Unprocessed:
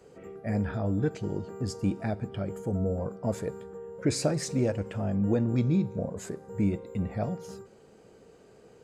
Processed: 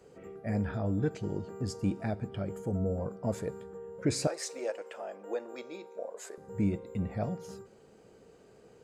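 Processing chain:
0:04.27–0:06.38: high-pass filter 450 Hz 24 dB per octave
level −2.5 dB

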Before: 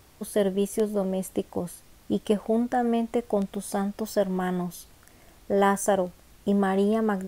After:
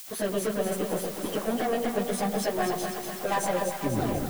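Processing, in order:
turntable brake at the end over 1.04 s
noise gate with hold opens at −44 dBFS
notch filter 900 Hz, Q 13
in parallel at +1 dB: downward compressor 10 to 1, threshold −35 dBFS, peak gain reduction 18 dB
on the sum: background noise violet −42 dBFS
mid-hump overdrive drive 24 dB, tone 4,400 Hz, clips at −9 dBFS
time stretch by phase vocoder 0.59×
delay that swaps between a low-pass and a high-pass 123 ms, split 810 Hz, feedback 77%, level −3 dB
convolution reverb RT60 1.9 s, pre-delay 92 ms, DRR 17 dB
level −7.5 dB

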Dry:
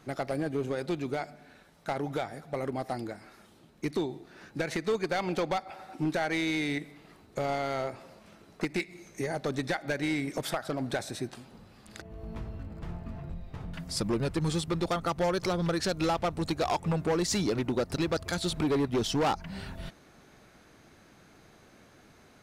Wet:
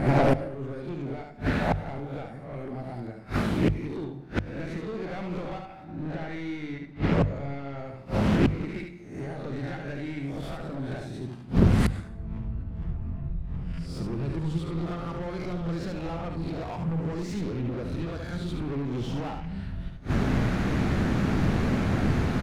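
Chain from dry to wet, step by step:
peak hold with a rise ahead of every peak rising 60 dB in 0.56 s
0:05.84–0:07.79: high-frequency loss of the air 79 metres
soft clipping −28 dBFS, distortion −11 dB
mains hum 50 Hz, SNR 20 dB
automatic gain control gain up to 15 dB
on a send: ambience of single reflections 50 ms −18 dB, 72 ms −5 dB
on the sum: gate with flip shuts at −22 dBFS, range −29 dB
bass and treble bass +13 dB, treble −10 dB
mains-hum notches 50/100/150 Hz
dense smooth reverb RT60 0.82 s, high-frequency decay 0.65×, pre-delay 85 ms, DRR 15 dB
highs frequency-modulated by the lows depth 0.84 ms
level +7.5 dB

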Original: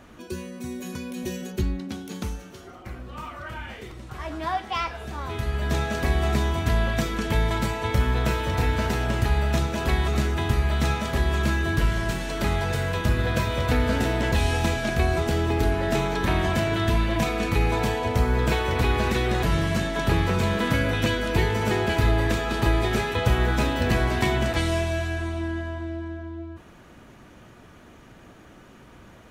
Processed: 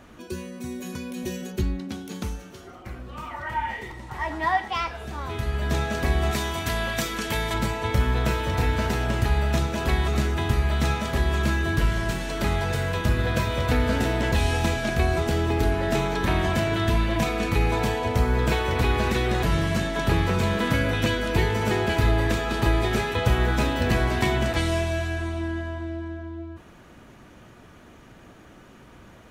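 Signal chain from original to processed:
0:03.30–0:04.68: hollow resonant body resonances 900/1,900 Hz, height 18 dB, ringing for 50 ms
0:06.31–0:07.54: spectral tilt +2 dB per octave

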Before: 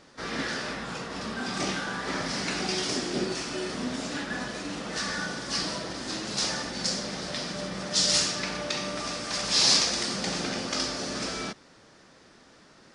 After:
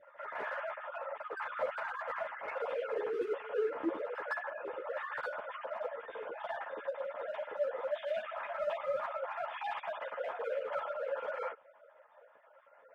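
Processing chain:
three sine waves on the formant tracks
low-pass filter 1,200 Hz 12 dB per octave
in parallel at −12 dB: wave folding −29 dBFS
on the sum: notch comb filter 380 Hz
echo ahead of the sound 160 ms −19 dB
string-ensemble chorus
level −2.5 dB

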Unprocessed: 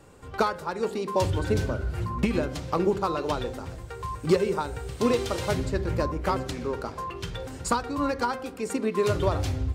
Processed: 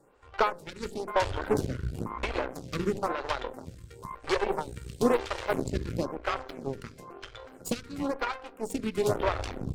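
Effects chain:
0:05.87–0:08.27: notch comb filter 910 Hz
harmonic generator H 6 −15 dB, 7 −22 dB, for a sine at −12 dBFS
phaser with staggered stages 0.99 Hz

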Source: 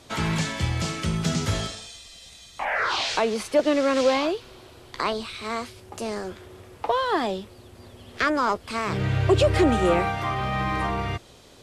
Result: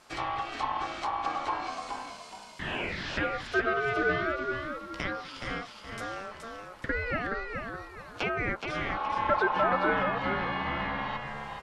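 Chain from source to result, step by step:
treble cut that deepens with the level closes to 1,900 Hz, closed at −21 dBFS
ring modulation 970 Hz
echo with shifted repeats 422 ms, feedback 34%, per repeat −57 Hz, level −5 dB
level −4.5 dB

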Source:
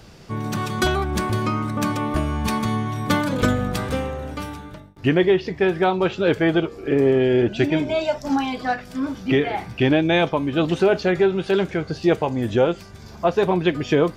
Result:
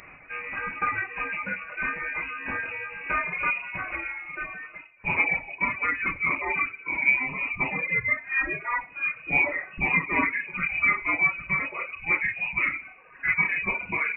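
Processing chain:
high-pass filter 190 Hz 12 dB per octave
spectral tilt +2.5 dB per octave
in parallel at +2 dB: downward compressor, threshold −31 dBFS, peak gain reduction 16 dB
on the sum: rectangular room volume 90 cubic metres, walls mixed, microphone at 1.4 metres
reverb reduction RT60 1.2 s
flanger 0.63 Hz, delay 2.9 ms, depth 1.3 ms, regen −71%
reversed playback
upward compression, threshold −29 dBFS
reversed playback
voice inversion scrambler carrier 2,700 Hz
level −7 dB

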